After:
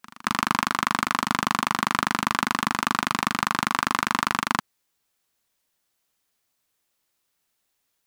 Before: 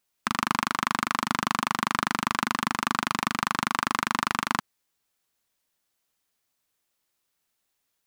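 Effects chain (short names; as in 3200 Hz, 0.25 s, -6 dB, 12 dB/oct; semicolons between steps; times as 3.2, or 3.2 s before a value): pre-echo 0.225 s -21 dB; gain +2.5 dB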